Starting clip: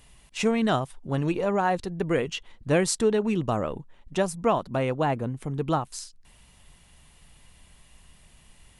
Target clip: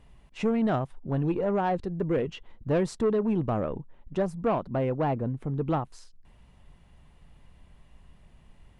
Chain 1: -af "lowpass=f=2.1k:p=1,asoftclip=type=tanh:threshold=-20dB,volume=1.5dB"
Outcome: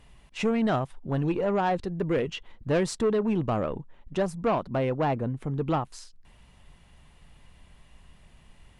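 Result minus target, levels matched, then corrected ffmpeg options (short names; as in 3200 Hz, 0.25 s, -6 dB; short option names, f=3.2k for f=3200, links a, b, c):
2000 Hz band +3.5 dB
-af "lowpass=f=840:p=1,asoftclip=type=tanh:threshold=-20dB,volume=1.5dB"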